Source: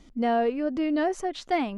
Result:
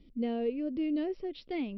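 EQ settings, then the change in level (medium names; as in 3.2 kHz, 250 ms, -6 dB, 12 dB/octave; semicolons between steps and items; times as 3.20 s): brick-wall FIR low-pass 5.7 kHz; distance through air 190 m; high-order bell 1.1 kHz -15 dB; -4.5 dB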